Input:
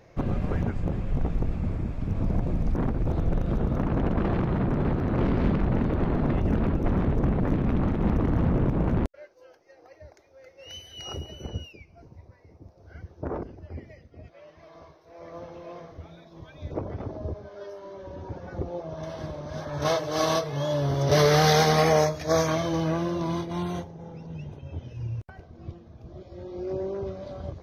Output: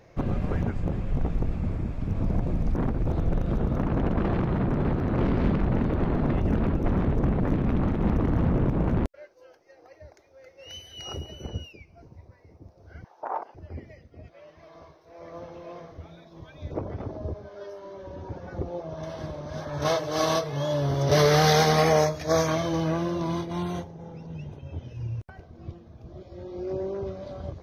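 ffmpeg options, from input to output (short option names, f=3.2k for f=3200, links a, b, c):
-filter_complex "[0:a]asettb=1/sr,asplit=3[a][b][c];[a]atrim=end=13.044[d];[b]atrim=start=13.04:end=13.55,asetpts=PTS-STARTPTS,afade=t=in:d=0.004:c=qsin,afade=t=out:st=0.506:d=0.004:c=qsin,highpass=f=840:t=q:w=4.2[e];[c]atrim=start=13.546[f];[d][e]acrossfade=d=0.004:c1=hsin:c2=qsin[g];[g][f]acrossfade=d=0.004:c1=qsin:c2=hsin"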